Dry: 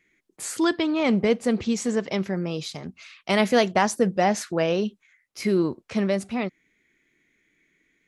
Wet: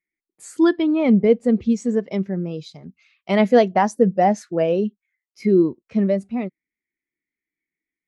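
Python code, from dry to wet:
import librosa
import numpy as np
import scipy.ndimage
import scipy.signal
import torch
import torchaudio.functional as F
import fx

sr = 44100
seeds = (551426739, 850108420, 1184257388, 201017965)

y = fx.peak_eq(x, sr, hz=65.0, db=8.5, octaves=0.24)
y = fx.spectral_expand(y, sr, expansion=1.5)
y = F.gain(torch.from_numpy(y), 2.0).numpy()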